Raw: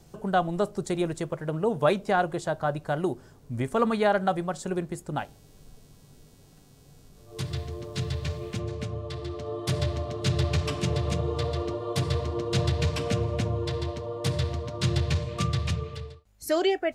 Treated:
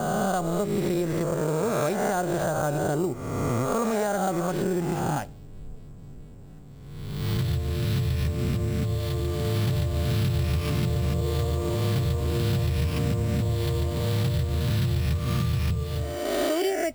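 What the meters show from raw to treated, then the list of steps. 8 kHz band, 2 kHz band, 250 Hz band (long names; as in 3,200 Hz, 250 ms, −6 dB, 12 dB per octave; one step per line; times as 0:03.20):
+4.0 dB, 0.0 dB, +3.0 dB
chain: peak hold with a rise ahead of every peak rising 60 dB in 1.47 s
low-shelf EQ 360 Hz +8.5 dB
downward compressor, threshold −22 dBFS, peak gain reduction 10.5 dB
low-pass that shuts in the quiet parts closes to 2,100 Hz, open at −22.5 dBFS
sample-rate reduction 7,800 Hz, jitter 0%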